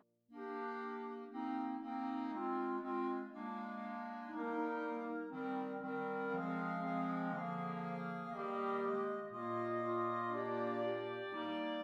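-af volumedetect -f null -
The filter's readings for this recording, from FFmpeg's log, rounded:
mean_volume: -41.3 dB
max_volume: -27.3 dB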